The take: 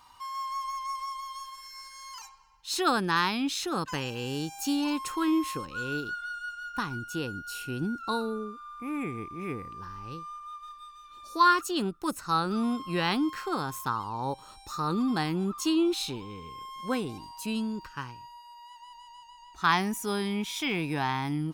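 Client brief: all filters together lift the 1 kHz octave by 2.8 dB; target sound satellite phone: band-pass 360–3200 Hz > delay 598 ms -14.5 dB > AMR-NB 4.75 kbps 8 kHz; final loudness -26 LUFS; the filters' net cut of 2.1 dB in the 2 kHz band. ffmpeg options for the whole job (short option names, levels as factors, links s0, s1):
-af "highpass=360,lowpass=3200,equalizer=f=1000:t=o:g=5,equalizer=f=2000:t=o:g=-5.5,aecho=1:1:598:0.188,volume=2" -ar 8000 -c:a libopencore_amrnb -b:a 4750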